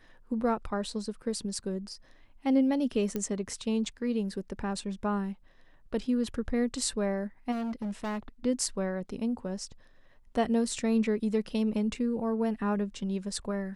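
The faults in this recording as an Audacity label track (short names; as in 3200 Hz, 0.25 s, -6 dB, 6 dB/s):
3.160000	3.160000	pop -19 dBFS
7.510000	8.190000	clipped -30.5 dBFS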